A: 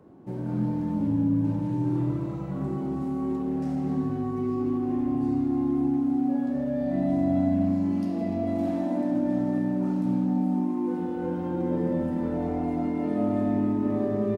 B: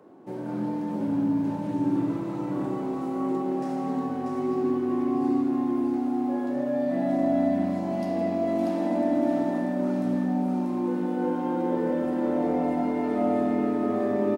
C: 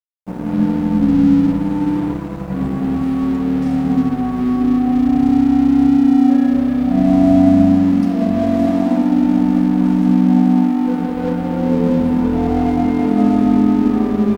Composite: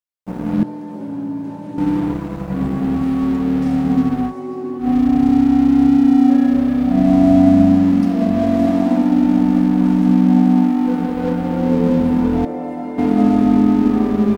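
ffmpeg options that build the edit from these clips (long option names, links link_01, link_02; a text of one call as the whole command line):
ffmpeg -i take0.wav -i take1.wav -i take2.wav -filter_complex "[1:a]asplit=3[link_01][link_02][link_03];[2:a]asplit=4[link_04][link_05][link_06][link_07];[link_04]atrim=end=0.632[link_08];[link_01]atrim=start=0.628:end=1.782[link_09];[link_05]atrim=start=1.778:end=4.35[link_10];[link_02]atrim=start=4.25:end=4.88[link_11];[link_06]atrim=start=4.78:end=12.452[link_12];[link_03]atrim=start=12.448:end=12.982[link_13];[link_07]atrim=start=12.978[link_14];[link_08][link_09]acrossfade=duration=0.004:curve1=hsin:curve2=hsin[link_15];[link_15][link_10]acrossfade=duration=0.004:curve1=hsin:curve2=hsin[link_16];[link_16][link_11]acrossfade=duration=0.1:curve1=tri:curve2=tri[link_17];[link_17][link_12]acrossfade=duration=0.1:curve1=tri:curve2=tri[link_18];[link_18][link_13]acrossfade=duration=0.004:curve1=hsin:curve2=hsin[link_19];[link_19][link_14]acrossfade=duration=0.004:curve1=hsin:curve2=hsin" out.wav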